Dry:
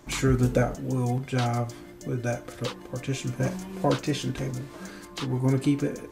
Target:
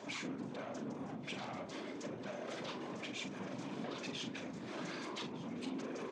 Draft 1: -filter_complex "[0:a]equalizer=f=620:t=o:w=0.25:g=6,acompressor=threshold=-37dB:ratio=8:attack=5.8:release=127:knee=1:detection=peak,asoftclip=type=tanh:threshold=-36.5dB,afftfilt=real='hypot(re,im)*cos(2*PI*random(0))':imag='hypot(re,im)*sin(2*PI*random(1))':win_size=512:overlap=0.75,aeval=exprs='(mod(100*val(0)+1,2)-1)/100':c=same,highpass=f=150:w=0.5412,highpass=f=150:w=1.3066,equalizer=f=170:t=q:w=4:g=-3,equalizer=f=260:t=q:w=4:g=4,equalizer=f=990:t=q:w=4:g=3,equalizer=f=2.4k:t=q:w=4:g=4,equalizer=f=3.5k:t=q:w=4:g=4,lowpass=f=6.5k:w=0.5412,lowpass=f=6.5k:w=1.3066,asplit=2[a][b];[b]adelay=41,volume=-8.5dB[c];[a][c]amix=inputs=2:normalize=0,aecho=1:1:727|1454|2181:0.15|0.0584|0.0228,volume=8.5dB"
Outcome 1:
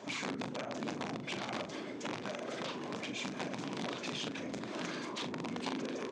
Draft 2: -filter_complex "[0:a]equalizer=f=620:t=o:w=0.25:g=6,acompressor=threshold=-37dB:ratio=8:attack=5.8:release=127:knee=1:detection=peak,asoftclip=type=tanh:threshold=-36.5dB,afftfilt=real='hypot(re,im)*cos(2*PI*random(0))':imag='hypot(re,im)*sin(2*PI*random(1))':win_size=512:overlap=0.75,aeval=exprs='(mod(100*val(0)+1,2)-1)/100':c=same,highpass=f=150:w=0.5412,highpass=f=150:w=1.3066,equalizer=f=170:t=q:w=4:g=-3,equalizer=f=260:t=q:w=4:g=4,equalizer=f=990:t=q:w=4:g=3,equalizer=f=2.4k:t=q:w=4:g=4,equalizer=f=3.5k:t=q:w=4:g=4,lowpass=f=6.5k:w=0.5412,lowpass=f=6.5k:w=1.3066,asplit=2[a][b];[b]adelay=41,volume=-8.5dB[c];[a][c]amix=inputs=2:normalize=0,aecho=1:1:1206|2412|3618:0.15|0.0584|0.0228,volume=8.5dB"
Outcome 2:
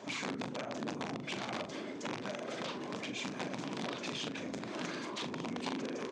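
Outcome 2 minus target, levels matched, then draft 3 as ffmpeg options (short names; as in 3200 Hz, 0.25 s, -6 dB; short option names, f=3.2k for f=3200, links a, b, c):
soft clip: distortion -7 dB
-filter_complex "[0:a]equalizer=f=620:t=o:w=0.25:g=6,acompressor=threshold=-37dB:ratio=8:attack=5.8:release=127:knee=1:detection=peak,asoftclip=type=tanh:threshold=-44dB,afftfilt=real='hypot(re,im)*cos(2*PI*random(0))':imag='hypot(re,im)*sin(2*PI*random(1))':win_size=512:overlap=0.75,aeval=exprs='(mod(100*val(0)+1,2)-1)/100':c=same,highpass=f=150:w=0.5412,highpass=f=150:w=1.3066,equalizer=f=170:t=q:w=4:g=-3,equalizer=f=260:t=q:w=4:g=4,equalizer=f=990:t=q:w=4:g=3,equalizer=f=2.4k:t=q:w=4:g=4,equalizer=f=3.5k:t=q:w=4:g=4,lowpass=f=6.5k:w=0.5412,lowpass=f=6.5k:w=1.3066,asplit=2[a][b];[b]adelay=41,volume=-8.5dB[c];[a][c]amix=inputs=2:normalize=0,aecho=1:1:1206|2412|3618:0.15|0.0584|0.0228,volume=8.5dB"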